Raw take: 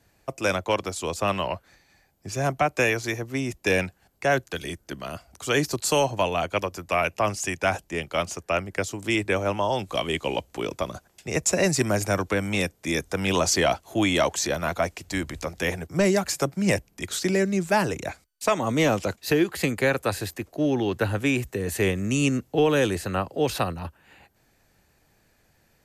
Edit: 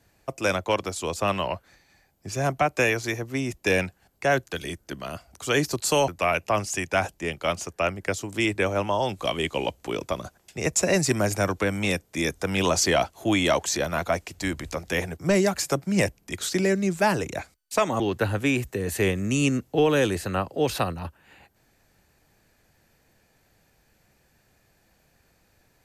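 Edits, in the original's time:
6.08–6.78 cut
18.7–20.8 cut

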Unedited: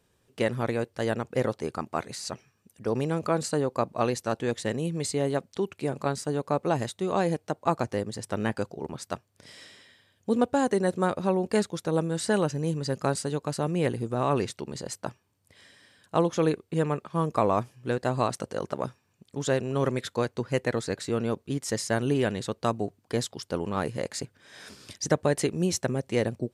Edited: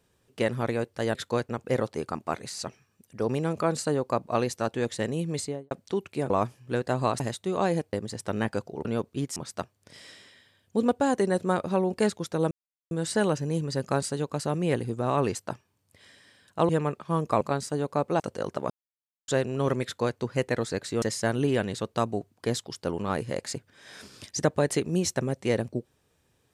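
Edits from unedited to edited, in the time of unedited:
5.01–5.37 studio fade out
5.96–6.75 swap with 17.46–18.36
7.48–7.97 cut
12.04 insert silence 0.40 s
14.48–14.91 cut
16.25–16.74 cut
18.86–19.44 mute
20–20.34 copy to 1.15
21.18–21.69 move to 8.89

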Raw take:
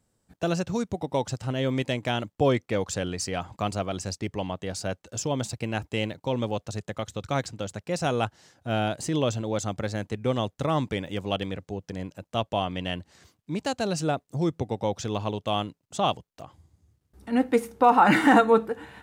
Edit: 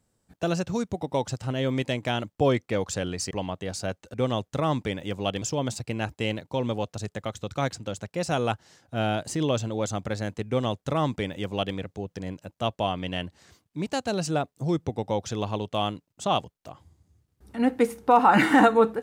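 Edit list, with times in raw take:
3.31–4.32 cut
10.2–11.48 copy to 5.15

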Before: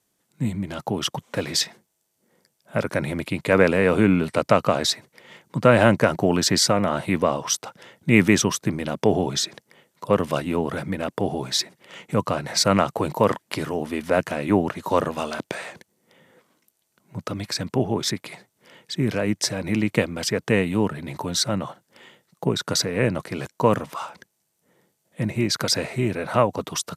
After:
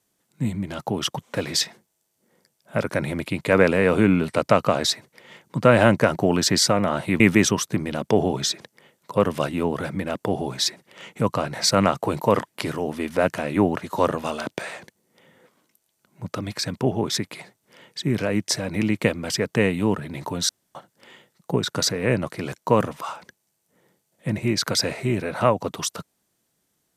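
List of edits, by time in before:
7.2–8.13 cut
21.42–21.68 room tone

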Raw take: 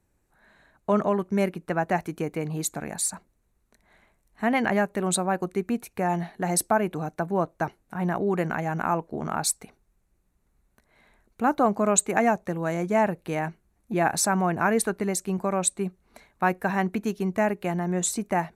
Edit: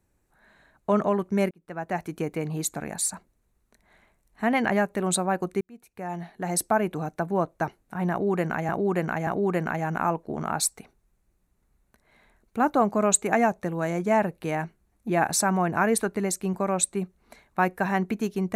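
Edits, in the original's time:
1.51–2.2 fade in
5.61–6.81 fade in
8.11–8.69 loop, 3 plays

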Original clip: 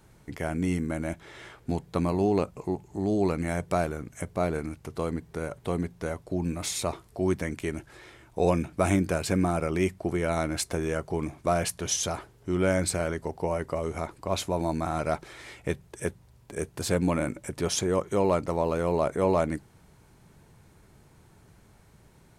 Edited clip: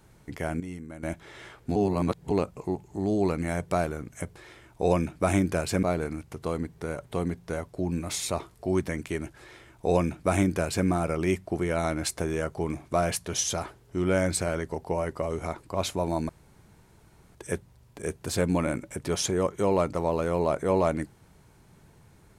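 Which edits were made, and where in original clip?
0.6–1.03 gain -11 dB
1.76–2.31 reverse
7.93–9.4 copy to 4.36
14.82–15.88 room tone

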